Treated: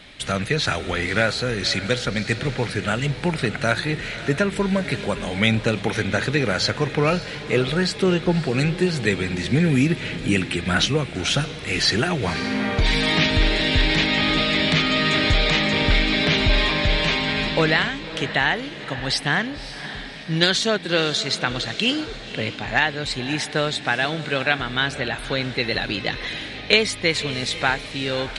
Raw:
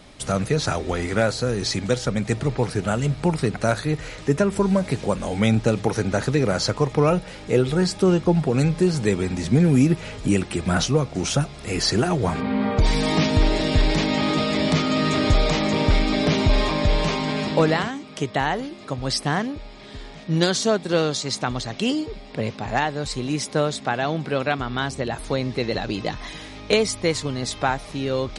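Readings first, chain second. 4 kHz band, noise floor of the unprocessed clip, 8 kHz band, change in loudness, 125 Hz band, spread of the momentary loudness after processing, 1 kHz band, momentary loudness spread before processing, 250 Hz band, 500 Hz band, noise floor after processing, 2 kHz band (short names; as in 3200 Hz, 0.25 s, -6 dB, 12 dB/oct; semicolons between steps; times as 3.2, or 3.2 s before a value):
+6.5 dB, -40 dBFS, -1.5 dB, +1.0 dB, -1.5 dB, 7 LU, -0.5 dB, 7 LU, -2.0 dB, -1.5 dB, -35 dBFS, +7.5 dB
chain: band shelf 2500 Hz +10 dB; on a send: diffused feedback echo 0.558 s, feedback 42%, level -13 dB; on the sum: gain -2 dB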